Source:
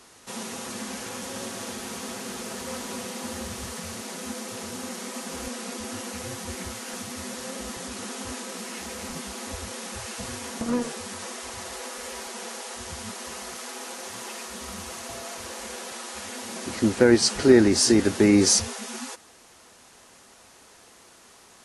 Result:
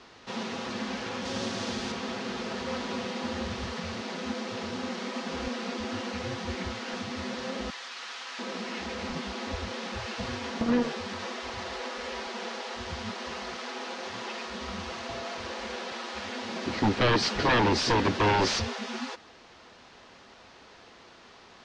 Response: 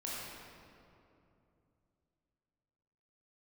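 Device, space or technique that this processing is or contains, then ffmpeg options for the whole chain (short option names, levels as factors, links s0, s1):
synthesiser wavefolder: -filter_complex "[0:a]asettb=1/sr,asplit=3[s0][s1][s2];[s0]atrim=end=1.254[s3];[s1]atrim=start=1.25:end=1.92,asetpts=PTS-STARTPTS,afade=t=in:d=0.004:c=qsin,afade=t=out:st=0.666:d=0.004:c=qsin,bass=f=250:g=4,treble=f=4000:g=7[s4];[s2]atrim=start=1.916[s5];[s3][s4]acrossfade=d=0.004:c1=hsin:c2=qsin[s6];[s6][s5]acrossfade=d=0.004:c1=qsin:c2=hsin,asettb=1/sr,asplit=3[s7][s8][s9];[s7]atrim=end=7.704[s10];[s8]atrim=start=7.7:end=8.39,asetpts=PTS-STARTPTS,afade=t=in:d=0.004:c=qsin,afade=t=out:st=0.686:d=0.004:c=qsin,highpass=1200[s11];[s9]atrim=start=8.386[s12];[s10][s11]acrossfade=d=0.004:c1=hsin:c2=qsin[s13];[s13][s12]acrossfade=d=0.004:c1=qsin:c2=hsin,aeval=exprs='0.112*(abs(mod(val(0)/0.112+3,4)-2)-1)':c=same,lowpass=f=4700:w=0.5412,lowpass=f=4700:w=1.3066,volume=1.26"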